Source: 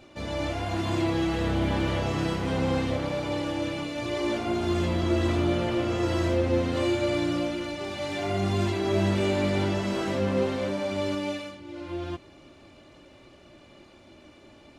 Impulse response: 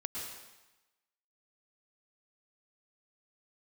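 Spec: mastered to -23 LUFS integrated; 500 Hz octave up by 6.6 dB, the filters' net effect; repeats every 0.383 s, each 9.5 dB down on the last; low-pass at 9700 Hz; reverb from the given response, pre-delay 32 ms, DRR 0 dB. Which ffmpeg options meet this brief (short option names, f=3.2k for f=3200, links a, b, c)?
-filter_complex "[0:a]lowpass=9.7k,equalizer=f=500:t=o:g=8.5,aecho=1:1:383|766|1149|1532:0.335|0.111|0.0365|0.012,asplit=2[a][b];[1:a]atrim=start_sample=2205,adelay=32[c];[b][c]afir=irnorm=-1:irlink=0,volume=-1.5dB[d];[a][d]amix=inputs=2:normalize=0,volume=-2.5dB"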